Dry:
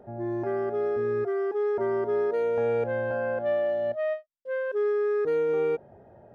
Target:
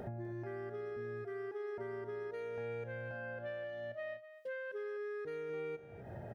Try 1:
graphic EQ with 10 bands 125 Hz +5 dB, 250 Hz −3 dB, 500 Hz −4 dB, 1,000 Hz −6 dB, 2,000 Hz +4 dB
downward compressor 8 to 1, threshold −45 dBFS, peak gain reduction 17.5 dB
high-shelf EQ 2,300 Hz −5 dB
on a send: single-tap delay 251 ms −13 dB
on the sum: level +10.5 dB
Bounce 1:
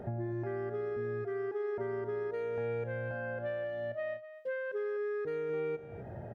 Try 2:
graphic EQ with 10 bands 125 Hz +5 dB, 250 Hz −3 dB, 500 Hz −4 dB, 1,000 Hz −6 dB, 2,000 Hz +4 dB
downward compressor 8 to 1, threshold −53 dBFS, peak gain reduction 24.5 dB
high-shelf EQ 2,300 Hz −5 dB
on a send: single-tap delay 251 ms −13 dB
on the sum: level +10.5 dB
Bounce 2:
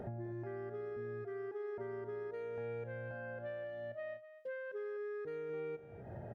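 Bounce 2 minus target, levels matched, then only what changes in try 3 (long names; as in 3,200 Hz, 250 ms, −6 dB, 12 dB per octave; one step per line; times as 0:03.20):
4,000 Hz band −5.5 dB
change: high-shelf EQ 2,300 Hz +4.5 dB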